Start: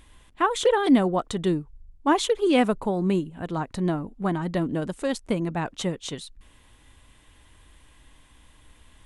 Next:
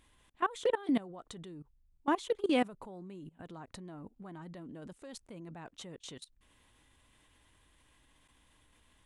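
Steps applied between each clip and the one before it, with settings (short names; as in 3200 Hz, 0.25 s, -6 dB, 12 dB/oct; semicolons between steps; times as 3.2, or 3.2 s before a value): low shelf 72 Hz -8 dB; level quantiser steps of 20 dB; gain -6.5 dB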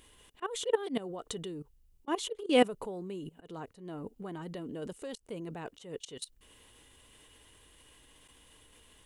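high shelf 4600 Hz +8.5 dB; auto swell 0.179 s; small resonant body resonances 440/2900 Hz, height 10 dB, ringing for 25 ms; gain +4 dB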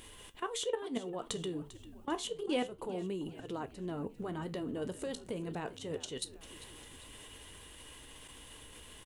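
compressor 2.5:1, threshold -45 dBFS, peak gain reduction 18 dB; flange 0.29 Hz, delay 8.7 ms, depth 8.8 ms, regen -67%; frequency-shifting echo 0.397 s, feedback 51%, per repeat -69 Hz, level -16 dB; gain +11.5 dB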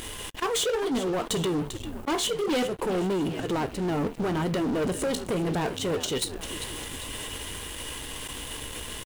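in parallel at -10 dB: crossover distortion -57 dBFS; on the sum: sample leveller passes 5; gain -3.5 dB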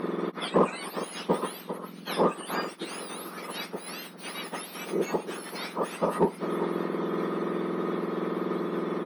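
spectrum mirrored in octaves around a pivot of 1900 Hz; running mean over 6 samples; in parallel at -8 dB: hard clip -23.5 dBFS, distortion -11 dB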